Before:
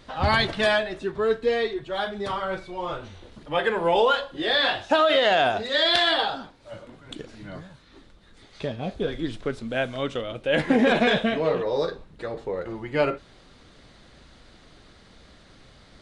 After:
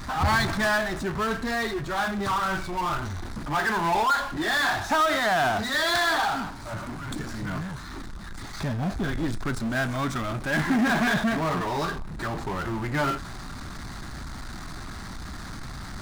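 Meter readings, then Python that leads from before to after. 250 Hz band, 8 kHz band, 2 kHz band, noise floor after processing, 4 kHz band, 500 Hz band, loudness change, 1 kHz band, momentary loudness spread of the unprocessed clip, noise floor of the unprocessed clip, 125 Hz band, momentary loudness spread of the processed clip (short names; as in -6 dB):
+1.0 dB, n/a, +1.0 dB, -38 dBFS, -6.0 dB, -7.0 dB, -2.0 dB, +1.5 dB, 18 LU, -53 dBFS, +5.0 dB, 16 LU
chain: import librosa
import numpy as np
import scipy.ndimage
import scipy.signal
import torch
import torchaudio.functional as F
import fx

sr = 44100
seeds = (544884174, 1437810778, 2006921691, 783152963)

y = fx.fixed_phaser(x, sr, hz=1200.0, stages=4)
y = fx.power_curve(y, sr, exponent=0.5)
y = y * librosa.db_to_amplitude(-3.0)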